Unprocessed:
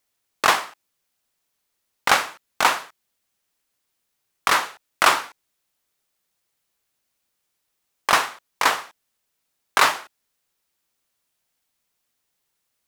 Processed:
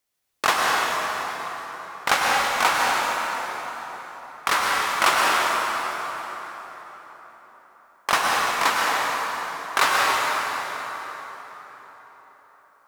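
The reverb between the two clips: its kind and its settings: plate-style reverb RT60 4.6 s, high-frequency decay 0.65×, pre-delay 90 ms, DRR -4 dB; gain -3.5 dB

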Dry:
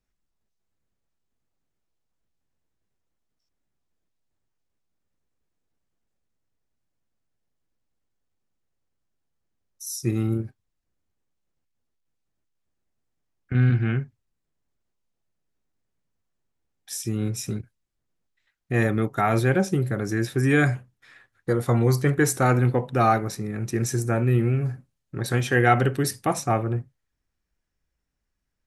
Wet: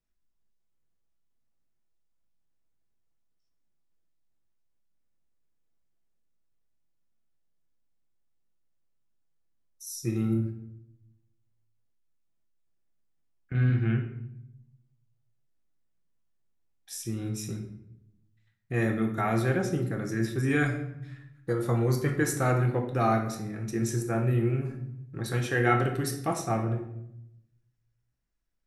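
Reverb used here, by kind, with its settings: shoebox room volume 210 m³, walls mixed, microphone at 0.71 m; gain -7 dB

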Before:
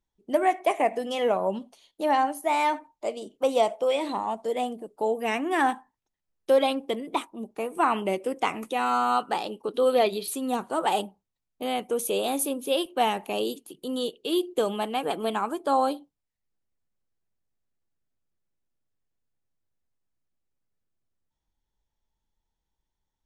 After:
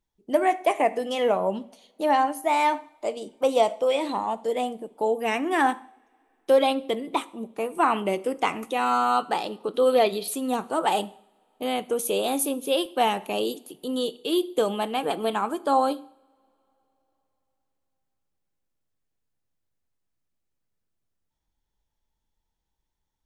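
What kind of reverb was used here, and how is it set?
two-slope reverb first 0.6 s, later 3.8 s, from -27 dB, DRR 16 dB; gain +1.5 dB

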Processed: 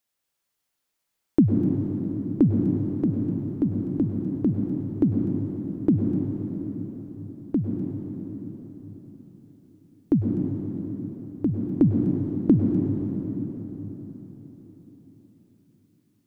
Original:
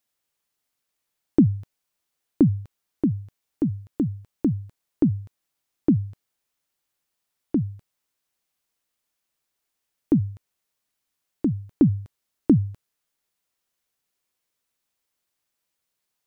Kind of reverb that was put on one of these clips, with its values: plate-style reverb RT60 4.8 s, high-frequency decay 0.75×, pre-delay 90 ms, DRR 0 dB; gain -1.5 dB

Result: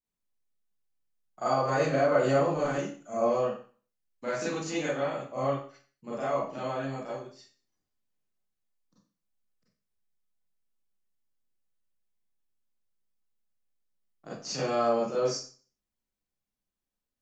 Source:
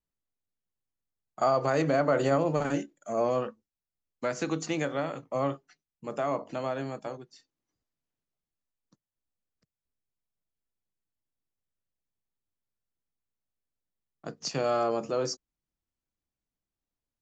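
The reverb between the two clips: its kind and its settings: Schroeder reverb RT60 0.41 s, combs from 30 ms, DRR -9 dB; gain -9 dB

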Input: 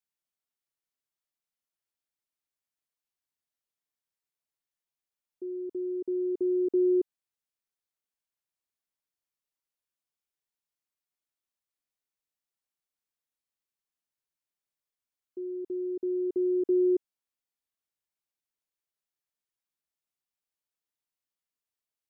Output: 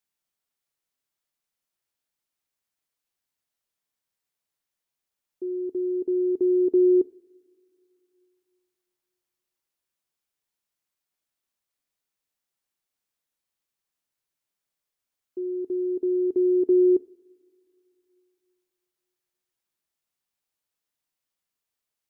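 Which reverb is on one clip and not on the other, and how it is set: two-slope reverb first 0.38 s, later 2.7 s, from -18 dB, DRR 17 dB; gain +5.5 dB

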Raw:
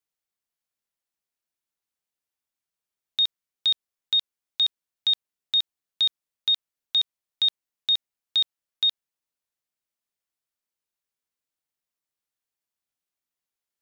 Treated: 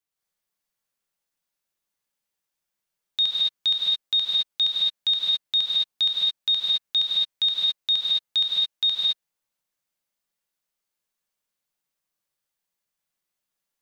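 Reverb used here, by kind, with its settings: non-linear reverb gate 0.24 s rising, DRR -5 dB; gain -1 dB

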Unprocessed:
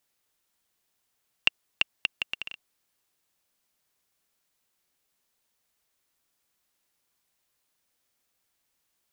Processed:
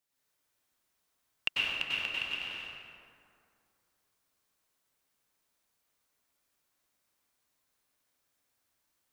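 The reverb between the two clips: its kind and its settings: plate-style reverb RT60 2.4 s, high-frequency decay 0.5×, pre-delay 85 ms, DRR -8 dB; gain -9 dB

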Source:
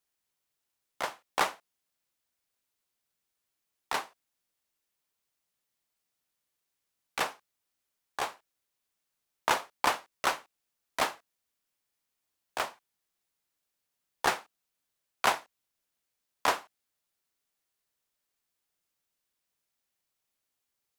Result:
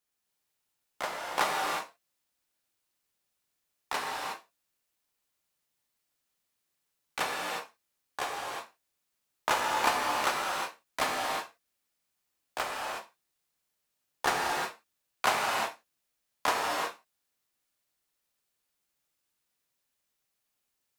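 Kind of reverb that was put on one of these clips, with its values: non-linear reverb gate 0.39 s flat, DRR -2.5 dB; gain -2 dB

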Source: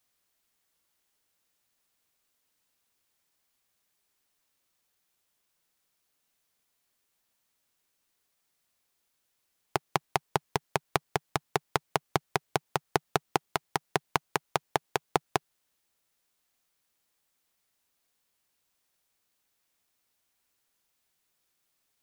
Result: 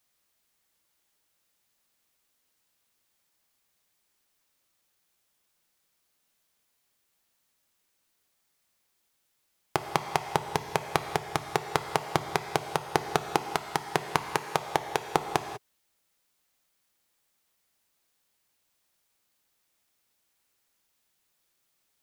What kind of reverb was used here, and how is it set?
non-linear reverb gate 0.22 s flat, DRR 7 dB; gain +1.5 dB

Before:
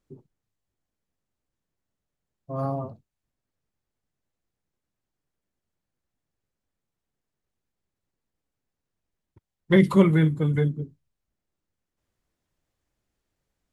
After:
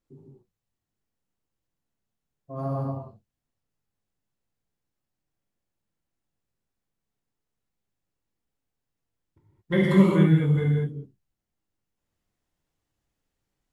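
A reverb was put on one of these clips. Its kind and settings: non-linear reverb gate 0.25 s flat, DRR -4 dB; gain -6.5 dB

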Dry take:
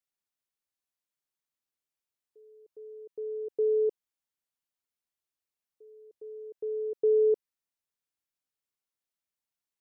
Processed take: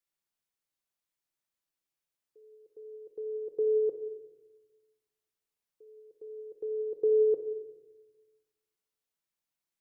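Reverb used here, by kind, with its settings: shoebox room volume 620 m³, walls mixed, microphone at 0.73 m

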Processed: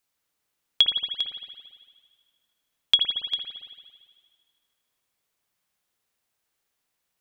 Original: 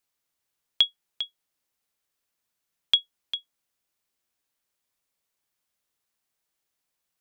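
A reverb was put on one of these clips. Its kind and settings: spring tank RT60 1.7 s, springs 56 ms, chirp 35 ms, DRR 1.5 dB; gain +2 dB

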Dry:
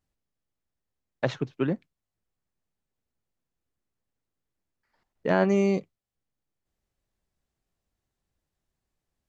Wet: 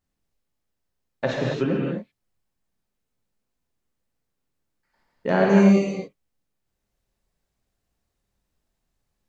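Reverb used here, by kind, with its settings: non-linear reverb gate 0.3 s flat, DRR -3.5 dB

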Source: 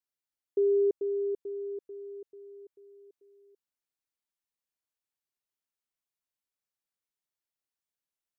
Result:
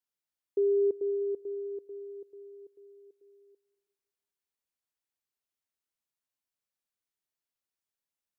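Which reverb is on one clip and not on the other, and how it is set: digital reverb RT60 1.4 s, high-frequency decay 0.75×, pre-delay 0.115 s, DRR 17 dB; gain -1 dB

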